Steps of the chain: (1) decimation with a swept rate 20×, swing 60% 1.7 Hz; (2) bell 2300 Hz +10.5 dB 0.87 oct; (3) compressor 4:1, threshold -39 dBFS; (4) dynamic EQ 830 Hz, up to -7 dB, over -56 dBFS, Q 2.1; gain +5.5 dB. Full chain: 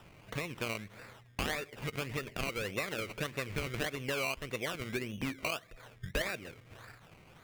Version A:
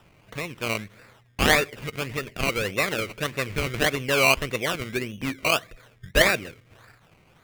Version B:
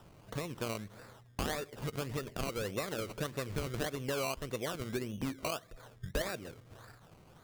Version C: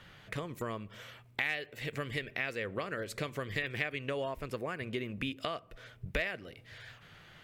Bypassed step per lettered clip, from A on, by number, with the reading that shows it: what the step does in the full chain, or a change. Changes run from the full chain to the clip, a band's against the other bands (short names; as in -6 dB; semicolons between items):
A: 3, mean gain reduction 9.0 dB; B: 2, 2 kHz band -7.0 dB; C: 1, 8 kHz band -8.5 dB